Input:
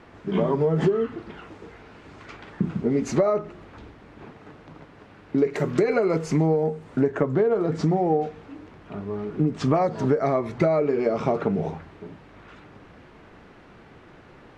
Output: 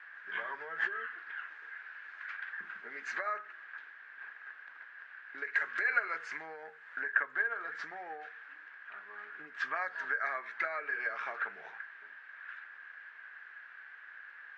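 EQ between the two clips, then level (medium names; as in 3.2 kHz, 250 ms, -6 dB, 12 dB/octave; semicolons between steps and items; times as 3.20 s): ladder band-pass 1.7 kHz, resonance 85%; +7.0 dB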